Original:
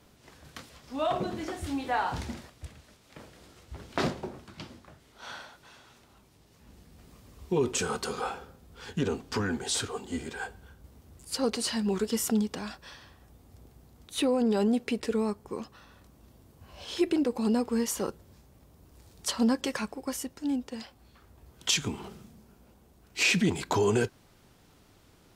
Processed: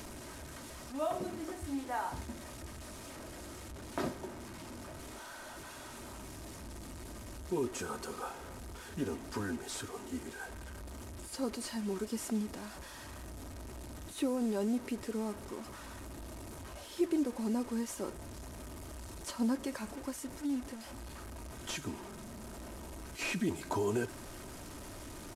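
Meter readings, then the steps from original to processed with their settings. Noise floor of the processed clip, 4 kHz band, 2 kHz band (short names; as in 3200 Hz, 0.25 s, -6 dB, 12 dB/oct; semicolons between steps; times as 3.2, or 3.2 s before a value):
-48 dBFS, -12.0 dB, -9.0 dB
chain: delta modulation 64 kbps, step -33 dBFS; dynamic EQ 3500 Hz, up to -7 dB, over -50 dBFS, Q 0.73; comb 3.2 ms, depth 39%; gain -7 dB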